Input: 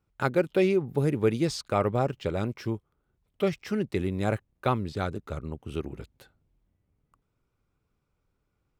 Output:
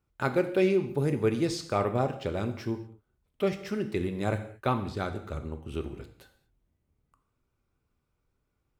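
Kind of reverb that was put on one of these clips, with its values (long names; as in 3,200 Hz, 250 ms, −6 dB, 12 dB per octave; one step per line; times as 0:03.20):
reverb whose tail is shaped and stops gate 250 ms falling, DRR 7 dB
level −2 dB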